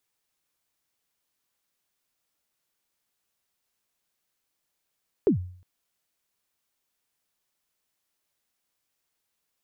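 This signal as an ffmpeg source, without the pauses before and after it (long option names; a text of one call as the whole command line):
ffmpeg -f lavfi -i "aevalsrc='0.2*pow(10,-3*t/0.53)*sin(2*PI*(460*0.108/log(90/460)*(exp(log(90/460)*min(t,0.108)/0.108)-1)+90*max(t-0.108,0)))':duration=0.36:sample_rate=44100" out.wav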